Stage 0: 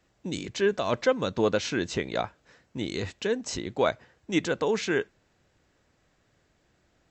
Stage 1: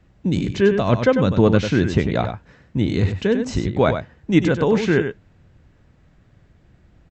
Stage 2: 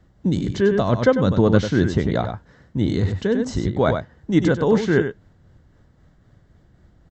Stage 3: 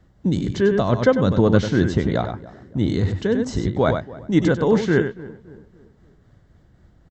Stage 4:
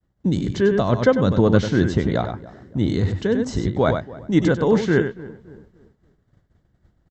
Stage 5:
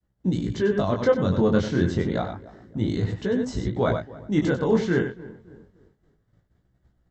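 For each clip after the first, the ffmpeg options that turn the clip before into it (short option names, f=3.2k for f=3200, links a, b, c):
-af "bass=f=250:g=13,treble=f=4k:g=-9,aecho=1:1:96:0.398,volume=5.5dB"
-af "equalizer=f=2.5k:w=5.1:g=-14,tremolo=f=3.8:d=0.31,volume=1dB"
-filter_complex "[0:a]asplit=2[a][b];[b]adelay=284,lowpass=f=1.4k:p=1,volume=-18.5dB,asplit=2[c][d];[d]adelay=284,lowpass=f=1.4k:p=1,volume=0.44,asplit=2[e][f];[f]adelay=284,lowpass=f=1.4k:p=1,volume=0.44,asplit=2[g][h];[h]adelay=284,lowpass=f=1.4k:p=1,volume=0.44[i];[a][c][e][g][i]amix=inputs=5:normalize=0"
-af "agate=range=-33dB:threshold=-45dB:ratio=3:detection=peak"
-af "flanger=delay=16:depth=7.3:speed=0.29,volume=-1.5dB"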